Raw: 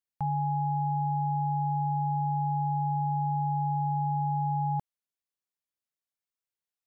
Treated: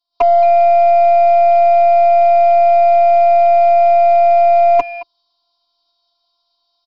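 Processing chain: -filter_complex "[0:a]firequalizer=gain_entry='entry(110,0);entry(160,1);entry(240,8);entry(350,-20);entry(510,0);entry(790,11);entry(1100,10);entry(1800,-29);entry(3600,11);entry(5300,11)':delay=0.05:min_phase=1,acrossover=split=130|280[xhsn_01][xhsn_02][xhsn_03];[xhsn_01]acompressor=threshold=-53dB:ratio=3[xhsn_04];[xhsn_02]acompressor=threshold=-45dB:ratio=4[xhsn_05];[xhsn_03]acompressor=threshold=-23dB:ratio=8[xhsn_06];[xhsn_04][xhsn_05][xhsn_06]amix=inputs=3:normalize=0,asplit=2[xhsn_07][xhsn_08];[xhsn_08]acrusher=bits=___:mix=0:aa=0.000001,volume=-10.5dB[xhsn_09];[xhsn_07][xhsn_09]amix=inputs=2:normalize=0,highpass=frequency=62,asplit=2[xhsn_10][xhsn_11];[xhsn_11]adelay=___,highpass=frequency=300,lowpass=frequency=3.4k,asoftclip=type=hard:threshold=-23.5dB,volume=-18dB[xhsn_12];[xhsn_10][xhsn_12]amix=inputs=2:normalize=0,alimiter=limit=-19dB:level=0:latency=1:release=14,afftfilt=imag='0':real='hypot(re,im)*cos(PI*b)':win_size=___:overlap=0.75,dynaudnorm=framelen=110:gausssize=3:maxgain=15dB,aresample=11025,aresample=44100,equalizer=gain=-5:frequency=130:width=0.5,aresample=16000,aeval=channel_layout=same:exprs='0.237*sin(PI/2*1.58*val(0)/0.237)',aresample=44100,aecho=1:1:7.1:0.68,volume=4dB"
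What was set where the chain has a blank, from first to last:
6, 220, 512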